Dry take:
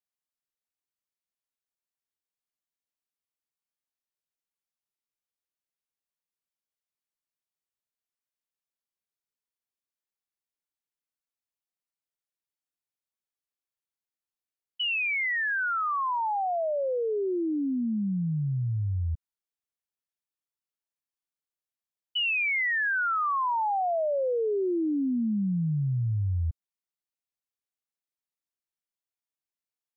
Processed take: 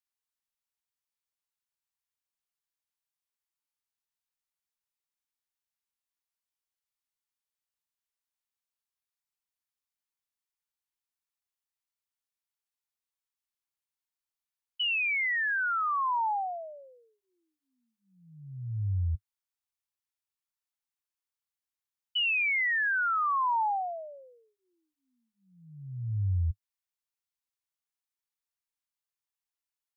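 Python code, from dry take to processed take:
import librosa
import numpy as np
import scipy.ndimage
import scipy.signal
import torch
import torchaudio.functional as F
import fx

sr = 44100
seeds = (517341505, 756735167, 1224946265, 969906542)

y = scipy.signal.sosfilt(scipy.signal.ellip(3, 1.0, 50, [100.0, 840.0], 'bandstop', fs=sr, output='sos'), x)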